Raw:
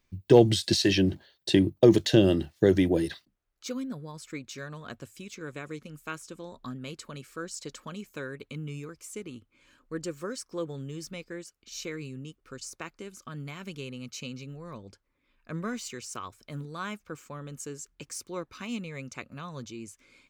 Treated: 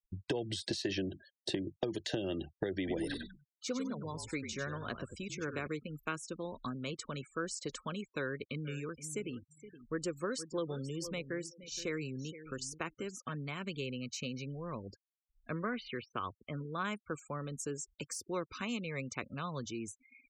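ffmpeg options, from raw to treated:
-filter_complex "[0:a]asettb=1/sr,asplit=3[a][b][c];[a]atrim=end=2.774[d];[b]atrim=start=2.77:end=5.67,asetpts=PTS-STARTPTS,afade=t=in:d=0.004:c=qsin,afade=t=out:st=2.896:d=0.004:c=qsin,asplit=5[e][f][g][h][i];[f]adelay=96,afreqshift=-47,volume=-8.5dB[j];[g]adelay=192,afreqshift=-94,volume=-19dB[k];[h]adelay=288,afreqshift=-141,volume=-29.4dB[l];[i]adelay=384,afreqshift=-188,volume=-39.9dB[m];[e][j][k][l][m]amix=inputs=5:normalize=0,atrim=end_sample=127890[n];[c]atrim=start=5.666[o];[d][n]acrossfade=d=0.004:c1=hsin:c2=qsin[p];[p][o]acrossfade=d=0.004:c1=qsin:c2=hsin,asettb=1/sr,asplit=3[q][r][s];[q]atrim=end=8.184[t];[r]atrim=start=8.18:end=13.43,asetpts=PTS-STARTPTS,afade=t=in:d=0.004:c=qsin,afade=t=out:st=5.246:d=0.004:c=qsin,aecho=1:1:470|940:0.178|0.0285,atrim=end_sample=231525[u];[s]atrim=start=13.426[v];[t][u]acrossfade=d=0.004:c1=hsin:c2=qsin[w];[w][v]acrossfade=d=0.004:c1=qsin:c2=hsin,asplit=3[x][y][z];[x]afade=t=out:st=15.59:d=0.02[aa];[y]lowpass=f=3.5k:w=0.5412,lowpass=f=3.5k:w=1.3066,afade=t=in:st=15.59:d=0.02,afade=t=out:st=16.83:d=0.02[ab];[z]afade=t=in:st=16.83:d=0.02[ac];[aa][ab][ac]amix=inputs=3:normalize=0,acompressor=threshold=-27dB:ratio=6,afftfilt=real='re*gte(hypot(re,im),0.00398)':imag='im*gte(hypot(re,im),0.00398)':win_size=1024:overlap=0.75,acrossover=split=360|1500[ad][ae][af];[ad]acompressor=threshold=-42dB:ratio=4[ag];[ae]acompressor=threshold=-37dB:ratio=4[ah];[af]acompressor=threshold=-41dB:ratio=4[ai];[ag][ah][ai]amix=inputs=3:normalize=0,volume=1.5dB"

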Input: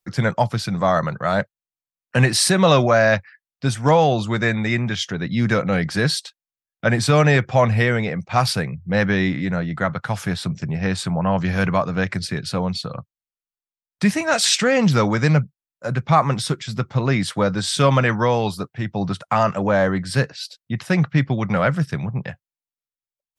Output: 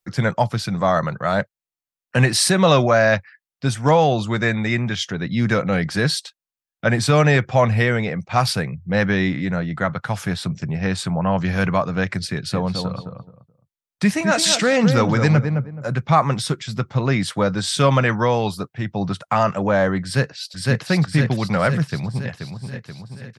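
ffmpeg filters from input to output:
-filter_complex "[0:a]asettb=1/sr,asplit=3[a][b][c];[a]atrim=end=12.304[d];[b]atrim=start=12.3:end=15.99,asetpts=PTS-STARTPTS,afade=t=in:d=0.004:c=qsin,afade=t=out:st=3.686:d=0.004:c=qsin,asplit=2[e][f];[f]adelay=213,lowpass=f=1.1k:p=1,volume=-5dB,asplit=2[g][h];[h]adelay=213,lowpass=f=1.1k:p=1,volume=0.25,asplit=2[i][j];[j]adelay=213,lowpass=f=1.1k:p=1,volume=0.25[k];[e][g][i][k]amix=inputs=4:normalize=0,atrim=end_sample=162729[l];[c]atrim=start=15.986[m];[d][l]acrossfade=d=0.004:c1=hsin:c2=qsin[n];[n][m]acrossfade=d=0.004:c1=qsin:c2=hsin,asplit=2[o][p];[p]afade=t=in:st=20.03:d=0.01,afade=t=out:st=20.85:d=0.01,aecho=0:1:510|1020|1530|2040|2550|3060|3570|4080|4590:0.944061|0.566437|0.339862|0.203917|0.12235|0.0734102|0.0440461|0.0264277|0.0158566[q];[o][q]amix=inputs=2:normalize=0,asplit=2[r][s];[s]afade=t=in:st=21.89:d=0.01,afade=t=out:st=22.29:d=0.01,aecho=0:1:480|960|1440|1920|2400|2880|3360|3840:0.446684|0.26801|0.160806|0.0964837|0.0578902|0.0347341|0.0208405|0.0125043[t];[r][t]amix=inputs=2:normalize=0"

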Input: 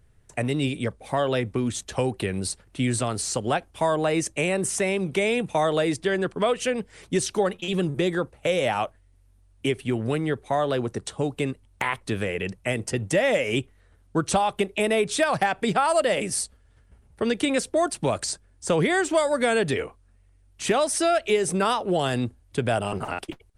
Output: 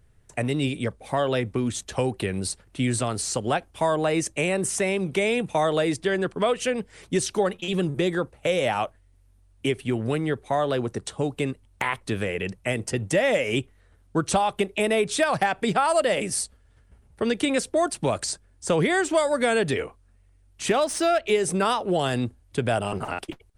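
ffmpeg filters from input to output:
-filter_complex "[0:a]asettb=1/sr,asplit=3[a][b][c];[a]atrim=end=20.724[d];[b]atrim=start=20.72:end=21.3,asetpts=PTS-STARTPTS,afade=t=in:d=0.004:c=qsin,afade=t=out:st=0.576:d=0.004:c=qsin,adynamicsmooth=sensitivity=5:basefreq=4.9k[e];[c]atrim=start=21.296[f];[d][e]acrossfade=d=0.004:c1=hsin:c2=qsin[g];[g][f]acrossfade=d=0.004:c1=qsin:c2=hsin"

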